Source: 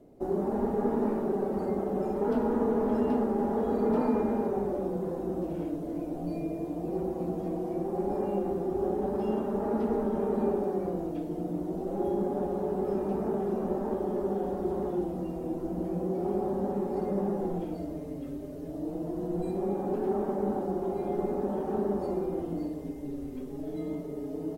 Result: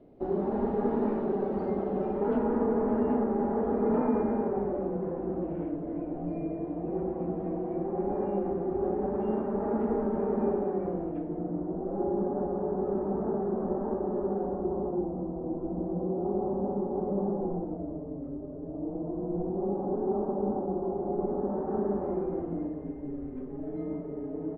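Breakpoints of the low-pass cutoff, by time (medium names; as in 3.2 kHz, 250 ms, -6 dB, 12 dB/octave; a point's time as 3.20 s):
low-pass 24 dB/octave
1.83 s 3.8 kHz
2.78 s 2.2 kHz
11.11 s 2.2 kHz
11.66 s 1.5 kHz
14.36 s 1.5 kHz
14.81 s 1.1 kHz
21.14 s 1.1 kHz
22.05 s 1.9 kHz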